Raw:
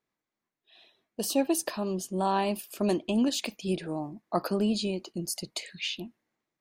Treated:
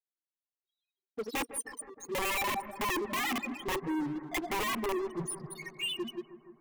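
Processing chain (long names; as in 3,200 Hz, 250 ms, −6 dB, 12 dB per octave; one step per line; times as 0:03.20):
delay that plays each chunk backwards 113 ms, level −8 dB
0:01.42–0:02.07: guitar amp tone stack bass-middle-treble 10-0-10
0:02.94–0:03.68: mains-hum notches 50/100/150/200/250/300/350/400 Hz
spectral peaks only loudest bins 2
wrap-around overflow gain 29.5 dB
phaser with its sweep stopped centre 970 Hz, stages 8
leveller curve on the samples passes 5
bucket-brigade delay 157 ms, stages 2,048, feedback 76%, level −15 dB
level −4 dB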